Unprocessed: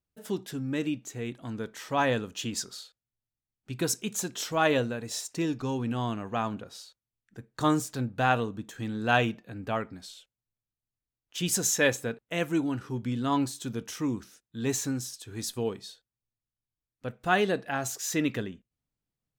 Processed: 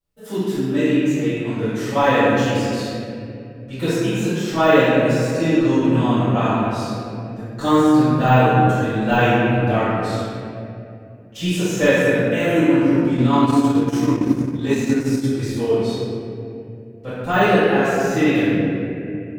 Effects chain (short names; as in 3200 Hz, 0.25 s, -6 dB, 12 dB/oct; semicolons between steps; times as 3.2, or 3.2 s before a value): de-esser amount 90%; reverb RT60 2.7 s, pre-delay 4 ms, DRR -16.5 dB; 13.12–15.26 transient shaper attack +3 dB, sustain -8 dB; gain -7 dB